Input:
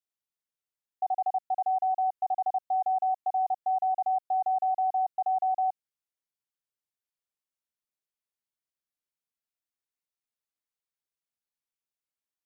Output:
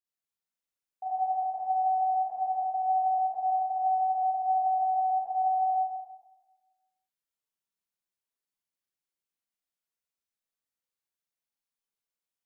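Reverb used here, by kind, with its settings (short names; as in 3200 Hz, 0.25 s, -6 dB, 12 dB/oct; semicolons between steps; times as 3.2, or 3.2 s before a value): Schroeder reverb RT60 1.2 s, combs from 33 ms, DRR -9.5 dB; gain -10 dB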